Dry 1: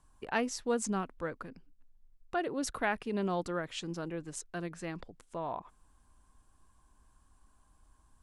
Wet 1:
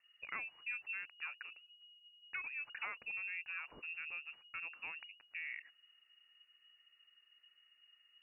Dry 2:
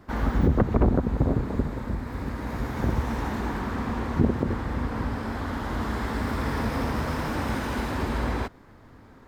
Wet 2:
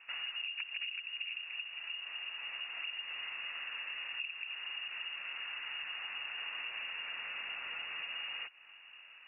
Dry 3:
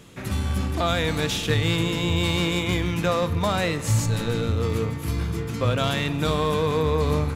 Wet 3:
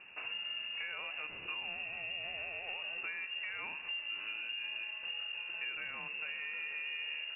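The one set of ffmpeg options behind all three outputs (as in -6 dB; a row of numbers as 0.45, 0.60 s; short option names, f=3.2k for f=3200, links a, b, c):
-af "acompressor=threshold=-35dB:ratio=4,lowpass=f=2.5k:t=q:w=0.5098,lowpass=f=2.5k:t=q:w=0.6013,lowpass=f=2.5k:t=q:w=0.9,lowpass=f=2.5k:t=q:w=2.563,afreqshift=-2900,volume=-5.5dB"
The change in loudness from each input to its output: -7.5, -11.5, -14.5 LU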